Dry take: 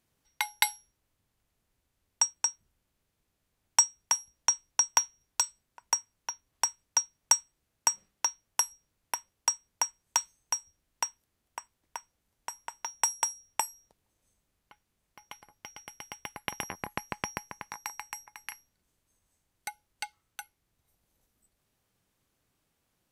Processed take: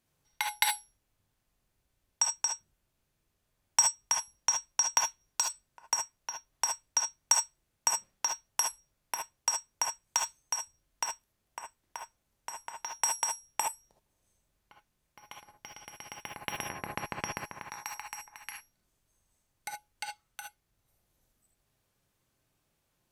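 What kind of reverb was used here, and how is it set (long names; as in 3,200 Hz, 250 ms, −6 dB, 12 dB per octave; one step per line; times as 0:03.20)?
reverb whose tail is shaped and stops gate 90 ms rising, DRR 1 dB
level −2.5 dB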